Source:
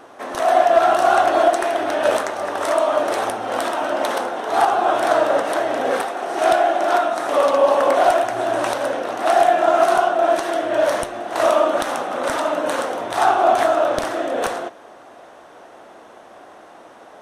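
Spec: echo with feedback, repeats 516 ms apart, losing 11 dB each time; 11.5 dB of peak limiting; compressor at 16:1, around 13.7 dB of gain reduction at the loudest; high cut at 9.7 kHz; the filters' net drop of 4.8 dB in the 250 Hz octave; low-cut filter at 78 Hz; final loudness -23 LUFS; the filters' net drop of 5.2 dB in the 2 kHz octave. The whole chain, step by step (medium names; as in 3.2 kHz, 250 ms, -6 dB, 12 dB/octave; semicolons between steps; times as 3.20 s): high-pass 78 Hz; low-pass 9.7 kHz; peaking EQ 250 Hz -7 dB; peaking EQ 2 kHz -7.5 dB; compression 16:1, threshold -25 dBFS; peak limiter -24.5 dBFS; feedback delay 516 ms, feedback 28%, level -11 dB; trim +9.5 dB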